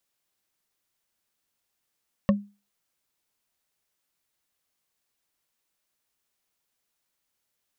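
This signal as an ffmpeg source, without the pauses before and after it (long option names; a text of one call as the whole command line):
ffmpeg -f lavfi -i "aevalsrc='0.211*pow(10,-3*t/0.3)*sin(2*PI*203*t)+0.126*pow(10,-3*t/0.089)*sin(2*PI*559.7*t)+0.075*pow(10,-3*t/0.04)*sin(2*PI*1097*t)+0.0447*pow(10,-3*t/0.022)*sin(2*PI*1813.4*t)+0.0266*pow(10,-3*t/0.013)*sin(2*PI*2708*t)':duration=0.45:sample_rate=44100" out.wav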